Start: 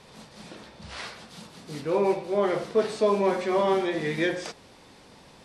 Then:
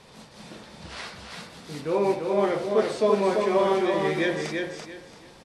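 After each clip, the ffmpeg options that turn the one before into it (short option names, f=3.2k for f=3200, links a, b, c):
-af "aecho=1:1:338|676|1014:0.631|0.151|0.0363"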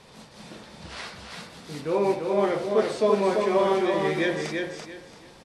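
-af anull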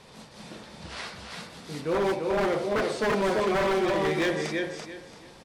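-af "aeval=exprs='0.106*(abs(mod(val(0)/0.106+3,4)-2)-1)':c=same"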